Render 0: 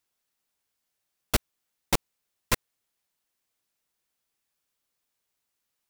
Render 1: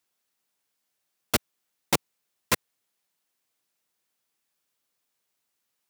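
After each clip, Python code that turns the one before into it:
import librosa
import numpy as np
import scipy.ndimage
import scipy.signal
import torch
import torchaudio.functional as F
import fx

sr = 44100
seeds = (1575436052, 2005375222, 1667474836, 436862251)

y = scipy.signal.sosfilt(scipy.signal.butter(2, 120.0, 'highpass', fs=sr, output='sos'), x)
y = y * librosa.db_to_amplitude(2.0)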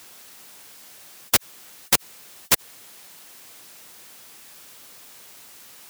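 y = fx.spectral_comp(x, sr, ratio=4.0)
y = y * librosa.db_to_amplitude(6.5)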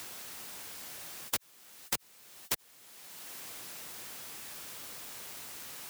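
y = fx.band_squash(x, sr, depth_pct=70)
y = y * librosa.db_to_amplitude(-7.5)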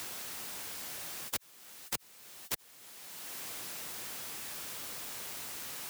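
y = fx.transient(x, sr, attack_db=-8, sustain_db=-1)
y = y * librosa.db_to_amplitude(3.0)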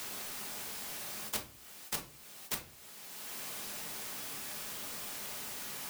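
y = fx.room_shoebox(x, sr, seeds[0], volume_m3=310.0, walls='furnished', distance_m=1.4)
y = y * librosa.db_to_amplitude(-1.5)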